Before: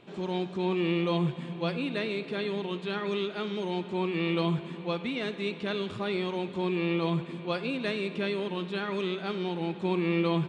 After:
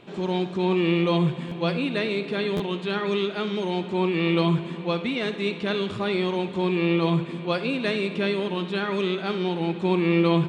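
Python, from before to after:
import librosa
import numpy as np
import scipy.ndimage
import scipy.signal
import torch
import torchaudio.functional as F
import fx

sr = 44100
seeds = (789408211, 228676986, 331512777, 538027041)

p1 = x + fx.room_flutter(x, sr, wall_m=11.2, rt60_s=0.26, dry=0)
p2 = fx.buffer_glitch(p1, sr, at_s=(1.48, 2.56), block=512, repeats=2)
y = p2 * librosa.db_to_amplitude(5.5)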